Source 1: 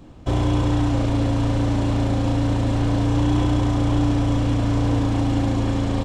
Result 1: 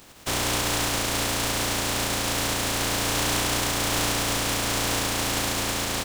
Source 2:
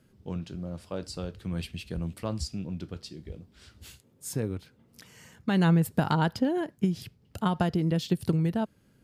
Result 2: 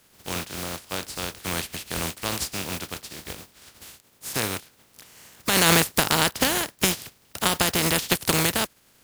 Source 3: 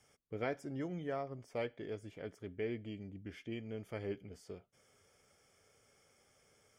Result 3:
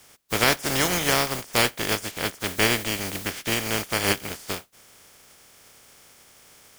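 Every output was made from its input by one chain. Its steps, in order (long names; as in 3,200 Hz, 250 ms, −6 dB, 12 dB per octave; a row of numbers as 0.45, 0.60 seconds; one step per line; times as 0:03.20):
compressing power law on the bin magnitudes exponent 0.29
loudness normalisation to −24 LKFS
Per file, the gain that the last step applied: −6.0, +4.0, +17.5 decibels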